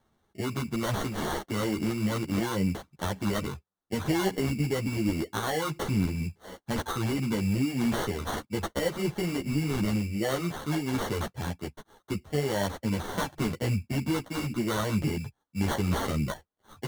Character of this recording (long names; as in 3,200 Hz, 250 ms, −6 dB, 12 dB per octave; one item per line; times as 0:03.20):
aliases and images of a low sample rate 2,500 Hz, jitter 0%
a shimmering, thickened sound